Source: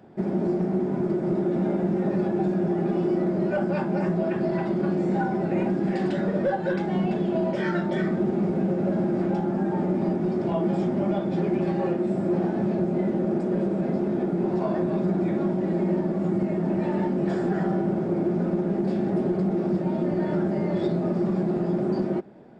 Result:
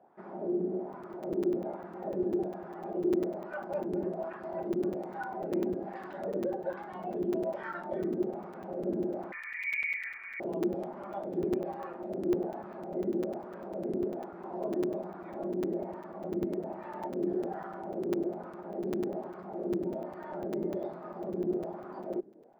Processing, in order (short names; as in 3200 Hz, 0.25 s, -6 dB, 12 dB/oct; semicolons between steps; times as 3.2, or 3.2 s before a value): wah 1.2 Hz 350–1200 Hz, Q 2.4; 9.32–10.4 inverted band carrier 2600 Hz; crackling interface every 0.10 s, samples 256, zero, from 0.93; gain -2.5 dB